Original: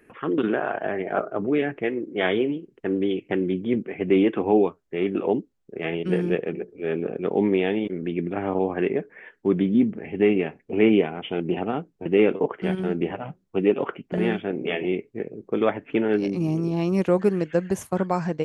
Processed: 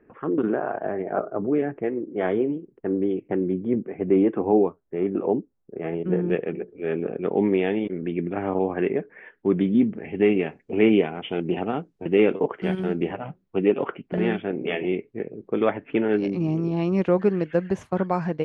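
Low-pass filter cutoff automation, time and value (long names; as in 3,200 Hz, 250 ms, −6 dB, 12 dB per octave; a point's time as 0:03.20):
1,200 Hz
from 0:06.30 2,800 Hz
from 0:09.61 4,800 Hz
from 0:10.36 8,000 Hz
from 0:13.12 3,600 Hz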